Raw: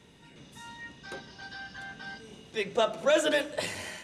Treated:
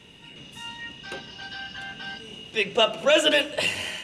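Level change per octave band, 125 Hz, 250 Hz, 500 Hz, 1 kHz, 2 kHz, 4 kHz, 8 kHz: +4.0 dB, +4.0 dB, +4.0 dB, +4.0 dB, +7.5 dB, +12.0 dB, +4.0 dB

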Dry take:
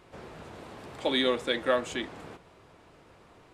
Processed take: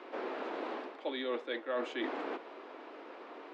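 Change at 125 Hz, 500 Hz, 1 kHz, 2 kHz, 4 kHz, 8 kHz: under -20 dB, -6.5 dB, -3.5 dB, -7.0 dB, -12.5 dB, under -15 dB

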